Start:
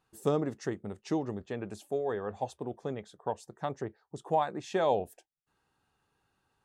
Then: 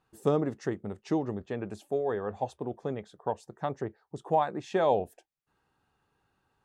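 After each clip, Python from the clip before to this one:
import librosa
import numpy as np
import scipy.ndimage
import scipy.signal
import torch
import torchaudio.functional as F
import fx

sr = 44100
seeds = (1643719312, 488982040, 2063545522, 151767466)

y = fx.high_shelf(x, sr, hz=3700.0, db=-7.5)
y = F.gain(torch.from_numpy(y), 2.5).numpy()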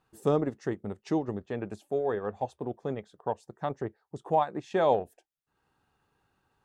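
y = fx.transient(x, sr, attack_db=-2, sustain_db=-6)
y = F.gain(torch.from_numpy(y), 1.5).numpy()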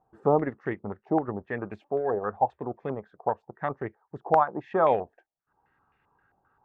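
y = fx.filter_held_lowpass(x, sr, hz=7.6, low_hz=750.0, high_hz=2200.0)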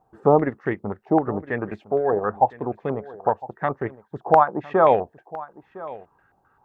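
y = x + 10.0 ** (-18.5 / 20.0) * np.pad(x, (int(1008 * sr / 1000.0), 0))[:len(x)]
y = F.gain(torch.from_numpy(y), 6.0).numpy()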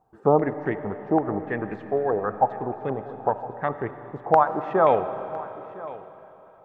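y = fx.rev_freeverb(x, sr, rt60_s=3.8, hf_ratio=1.0, predelay_ms=25, drr_db=10.5)
y = F.gain(torch.from_numpy(y), -2.5).numpy()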